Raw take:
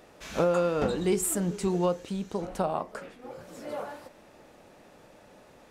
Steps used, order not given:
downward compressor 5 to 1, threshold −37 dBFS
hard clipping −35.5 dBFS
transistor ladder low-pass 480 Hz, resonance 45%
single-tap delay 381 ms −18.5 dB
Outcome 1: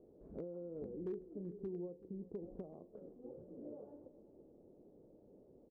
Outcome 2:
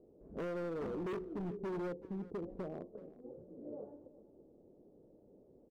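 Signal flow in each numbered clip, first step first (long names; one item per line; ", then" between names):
downward compressor, then transistor ladder low-pass, then hard clipping, then single-tap delay
transistor ladder low-pass, then hard clipping, then downward compressor, then single-tap delay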